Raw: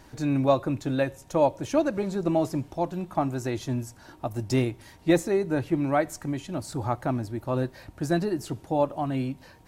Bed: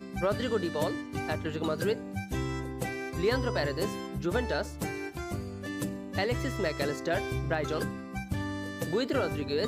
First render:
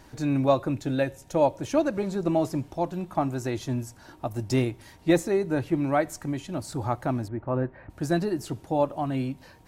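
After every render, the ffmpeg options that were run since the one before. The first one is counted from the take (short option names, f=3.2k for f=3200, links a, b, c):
-filter_complex "[0:a]asettb=1/sr,asplit=3[a][b][c];[a]atrim=end=0.744[d];[b]atrim=start=0.74:end=1.41,asetpts=PTS-STARTPTS,afade=t=in:d=0.004:c=qsin,afade=t=out:st=0.666:d=0.004:c=qsin,equalizer=f=1.1k:w=6.3:g=-9[e];[c]atrim=start=1.406[f];[d][e]acrossfade=d=0.004:c1=hsin:c2=qsin[g];[g][f]acrossfade=d=0.004:c1=qsin:c2=hsin,asettb=1/sr,asplit=3[h][i][j];[h]atrim=end=7.284[k];[i]atrim=start=7.28:end=7.9,asetpts=PTS-STARTPTS,afade=t=in:d=0.004:c=qsin,afade=t=out:st=0.616:d=0.004:c=qsin,lowpass=f=2.1k:w=0.5412,lowpass=f=2.1k:w=1.3066[l];[j]atrim=start=7.896[m];[k][l]acrossfade=d=0.004:c1=hsin:c2=qsin[n];[n][m]acrossfade=d=0.004:c1=qsin:c2=hsin"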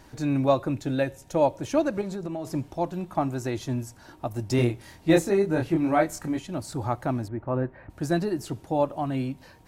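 -filter_complex "[0:a]asettb=1/sr,asplit=3[a][b][c];[a]atrim=end=2.014[d];[b]atrim=start=2.01:end=2.47,asetpts=PTS-STARTPTS,afade=t=in:d=0.004:c=qsin,afade=t=out:st=0.456:d=0.004:c=qsin,acompressor=threshold=-29dB:ratio=6:attack=3.2:release=140:knee=1:detection=peak[e];[c]atrim=start=2.466[f];[d][e]acrossfade=d=0.004:c1=hsin:c2=qsin[g];[g][f]acrossfade=d=0.004:c1=qsin:c2=hsin,asettb=1/sr,asplit=3[h][i][j];[h]atrim=end=4.564[k];[i]atrim=start=4.56:end=6.39,asetpts=PTS-STARTPTS,afade=t=in:d=0.004:c=qsin,afade=t=out:st=1.826:d=0.004:c=qsin,asplit=2[l][m];[m]adelay=25,volume=-2.5dB[n];[l][n]amix=inputs=2:normalize=0,atrim=end_sample=80703[o];[j]atrim=start=6.386[p];[k][o]acrossfade=d=0.004:c1=hsin:c2=qsin[q];[q][p]acrossfade=d=0.004:c1=qsin:c2=hsin"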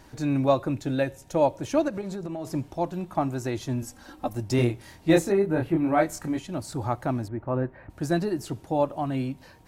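-filter_complex "[0:a]asettb=1/sr,asplit=3[a][b][c];[a]atrim=end=1.884[d];[b]atrim=start=1.88:end=2.41,asetpts=PTS-STARTPTS,afade=t=in:d=0.004:c=qsin,afade=t=out:st=0.526:d=0.004:c=qsin,acompressor=threshold=-29dB:ratio=2.5:attack=3.2:release=140:knee=1:detection=peak[e];[c]atrim=start=2.406[f];[d][e]acrossfade=d=0.004:c1=hsin:c2=qsin[g];[g][f]acrossfade=d=0.004:c1=qsin:c2=hsin,asettb=1/sr,asplit=3[h][i][j];[h]atrim=end=3.824[k];[i]atrim=start=3.82:end=4.35,asetpts=PTS-STARTPTS,afade=t=in:d=0.004:c=qsin,afade=t=out:st=0.526:d=0.004:c=qsin,aecho=1:1:3.8:0.95,atrim=end_sample=23373[l];[j]atrim=start=4.346[m];[k][l]acrossfade=d=0.004:c1=hsin:c2=qsin[n];[n][m]acrossfade=d=0.004:c1=qsin:c2=hsin,asettb=1/sr,asplit=3[o][p][q];[o]atrim=end=5.324[r];[p]atrim=start=5.32:end=5.98,asetpts=PTS-STARTPTS,afade=t=in:d=0.004:c=qsin,afade=t=out:st=0.656:d=0.004:c=qsin,equalizer=f=6k:t=o:w=1.3:g=-12[s];[q]atrim=start=5.976[t];[r][s]acrossfade=d=0.004:c1=hsin:c2=qsin[u];[u][t]acrossfade=d=0.004:c1=qsin:c2=hsin"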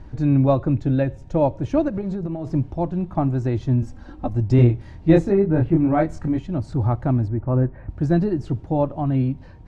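-af "lowpass=8k,aemphasis=mode=reproduction:type=riaa"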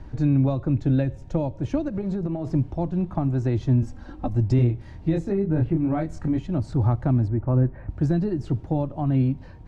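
-filter_complex "[0:a]alimiter=limit=-11.5dB:level=0:latency=1:release=402,acrossover=split=280|3000[a][b][c];[b]acompressor=threshold=-27dB:ratio=6[d];[a][d][c]amix=inputs=3:normalize=0"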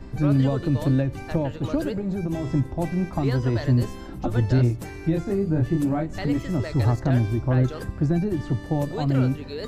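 -filter_complex "[1:a]volume=-3.5dB[a];[0:a][a]amix=inputs=2:normalize=0"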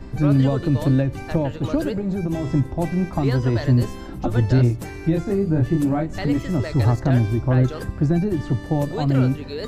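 -af "volume=3dB"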